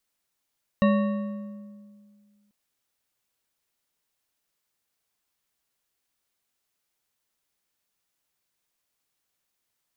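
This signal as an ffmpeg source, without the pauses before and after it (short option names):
-f lavfi -i "aevalsrc='0.15*pow(10,-3*t/2.07)*sin(2*PI*206*t)+0.0841*pow(10,-3*t/1.527)*sin(2*PI*567.9*t)+0.0473*pow(10,-3*t/1.248)*sin(2*PI*1113.2*t)+0.0266*pow(10,-3*t/1.073)*sin(2*PI*1840.2*t)+0.015*pow(10,-3*t/0.952)*sin(2*PI*2748*t)+0.00841*pow(10,-3*t/0.861)*sin(2*PI*3839.8*t)':d=1.69:s=44100"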